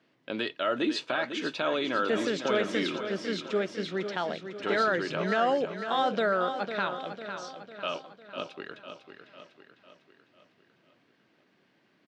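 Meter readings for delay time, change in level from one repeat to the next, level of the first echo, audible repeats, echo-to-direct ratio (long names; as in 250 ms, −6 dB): 501 ms, −6.0 dB, −9.0 dB, 5, −7.5 dB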